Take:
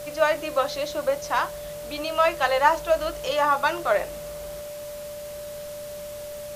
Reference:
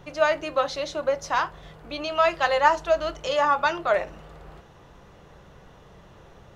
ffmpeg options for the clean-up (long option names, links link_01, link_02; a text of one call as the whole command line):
ffmpeg -i in.wav -af "bandreject=frequency=57:width_type=h:width=4,bandreject=frequency=114:width_type=h:width=4,bandreject=frequency=171:width_type=h:width=4,bandreject=frequency=228:width_type=h:width=4,bandreject=frequency=590:width=30,afwtdn=0.0063" out.wav